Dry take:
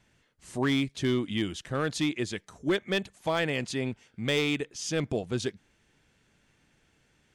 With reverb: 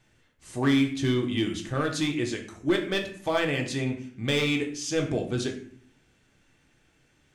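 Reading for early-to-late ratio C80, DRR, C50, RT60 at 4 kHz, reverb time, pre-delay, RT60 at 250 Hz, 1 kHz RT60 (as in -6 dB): 13.0 dB, 2.0 dB, 9.0 dB, 0.40 s, 0.50 s, 3 ms, 0.85 s, 0.50 s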